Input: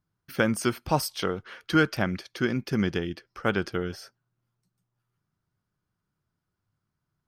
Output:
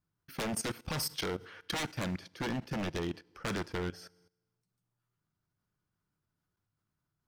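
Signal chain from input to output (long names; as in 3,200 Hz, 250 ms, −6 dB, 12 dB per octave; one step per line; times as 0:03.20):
wave folding −24 dBFS
feedback delay network reverb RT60 0.95 s, low-frequency decay 1.05×, high-frequency decay 0.9×, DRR 15.5 dB
output level in coarse steps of 17 dB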